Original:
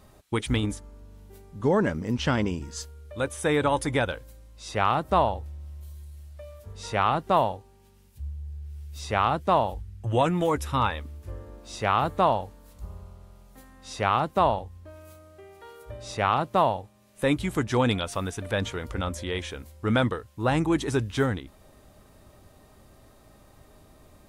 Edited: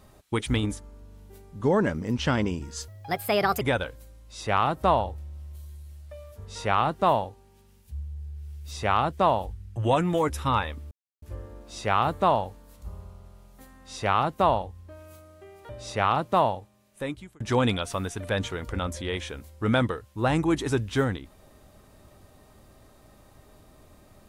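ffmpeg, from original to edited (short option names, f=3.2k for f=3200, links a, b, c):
-filter_complex "[0:a]asplit=6[a][b][c][d][e][f];[a]atrim=end=2.884[g];[b]atrim=start=2.88:end=3.89,asetpts=PTS-STARTPTS,asetrate=60858,aresample=44100,atrim=end_sample=32276,asetpts=PTS-STARTPTS[h];[c]atrim=start=3.886:end=11.19,asetpts=PTS-STARTPTS,afade=t=out:st=7.3:d=0.004:c=hsin,apad=pad_dur=0.31[i];[d]atrim=start=11.19:end=15.662,asetpts=PTS-STARTPTS,afade=t=in:d=0.004:c=hsin[j];[e]atrim=start=15.908:end=17.62,asetpts=PTS-STARTPTS,afade=t=out:st=0.792:d=0.92[k];[f]atrim=start=17.62,asetpts=PTS-STARTPTS,afade=t=in:d=0.004:c=hsin[l];[g][h]acrossfade=d=0.004:c1=hsin:c2=hsin[m];[i][j]concat=n=2:v=0:a=1[n];[m][n]acrossfade=d=0.004:c1=hsin:c2=hsin[o];[k][l]concat=n=2:v=0:a=1[p];[o][p]acrossfade=d=0.004:c1=hsin:c2=hsin"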